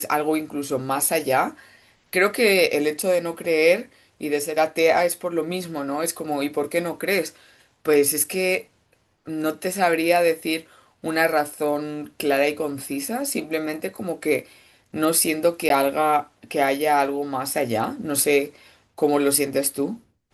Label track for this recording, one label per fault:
15.690000	15.700000	drop-out

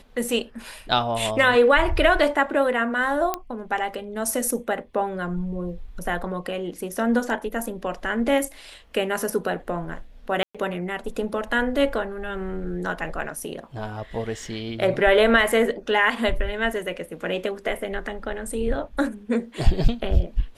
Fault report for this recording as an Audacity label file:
3.340000	3.340000	click −9 dBFS
10.430000	10.550000	drop-out 116 ms

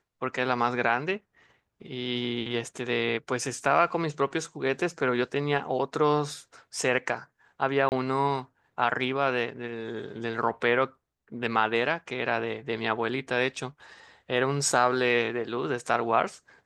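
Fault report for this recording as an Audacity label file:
7.890000	7.920000	drop-out 29 ms

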